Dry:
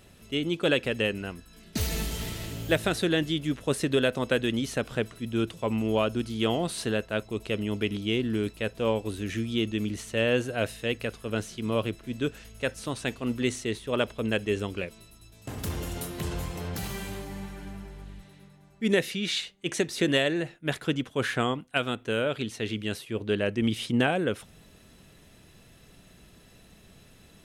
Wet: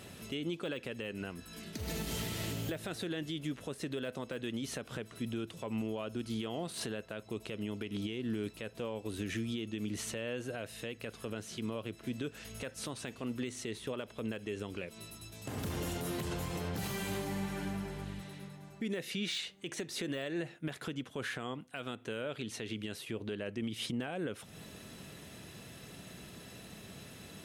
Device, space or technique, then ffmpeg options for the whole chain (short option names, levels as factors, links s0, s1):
podcast mastering chain: -af "highpass=93,deesser=0.75,acompressor=threshold=0.0112:ratio=3,alimiter=level_in=2.82:limit=0.0631:level=0:latency=1:release=160,volume=0.355,volume=2" -ar 44100 -c:a libmp3lame -b:a 96k